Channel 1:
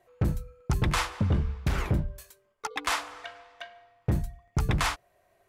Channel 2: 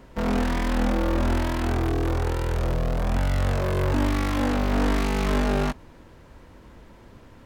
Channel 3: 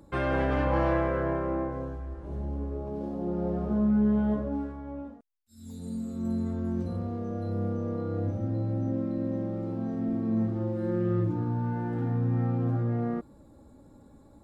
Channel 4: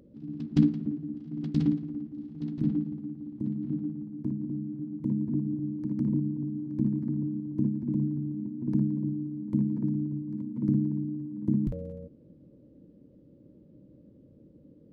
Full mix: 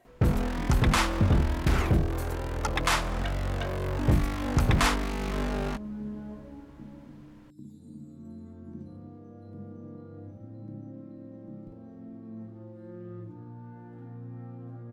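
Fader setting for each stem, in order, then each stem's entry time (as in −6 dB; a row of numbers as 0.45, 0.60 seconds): +2.5, −7.5, −15.0, −19.5 decibels; 0.00, 0.05, 2.00, 0.00 seconds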